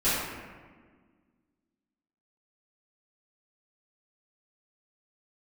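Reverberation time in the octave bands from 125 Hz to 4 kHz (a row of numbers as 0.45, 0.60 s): 1.9, 2.3, 1.7, 1.5, 1.4, 0.90 s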